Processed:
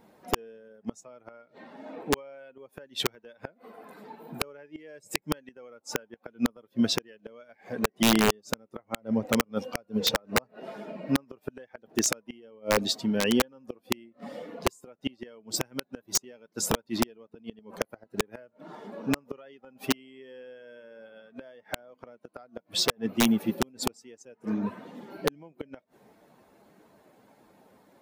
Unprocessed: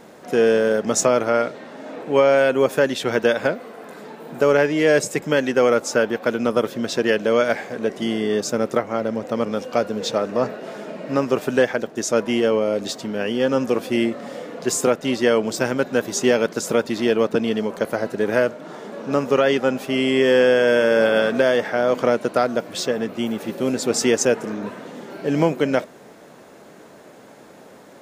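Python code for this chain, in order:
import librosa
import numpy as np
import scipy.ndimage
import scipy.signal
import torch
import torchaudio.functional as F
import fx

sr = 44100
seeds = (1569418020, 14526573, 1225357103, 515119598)

y = fx.bin_expand(x, sr, power=1.5)
y = fx.gate_flip(y, sr, shuts_db=-16.0, range_db=-34)
y = (np.mod(10.0 ** (18.5 / 20.0) * y + 1.0, 2.0) - 1.0) / 10.0 ** (18.5 / 20.0)
y = y * 10.0 ** (4.5 / 20.0)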